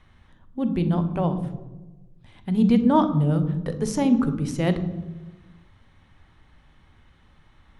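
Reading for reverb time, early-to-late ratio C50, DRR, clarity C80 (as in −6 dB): 1.2 s, 11.5 dB, 9.0 dB, 13.5 dB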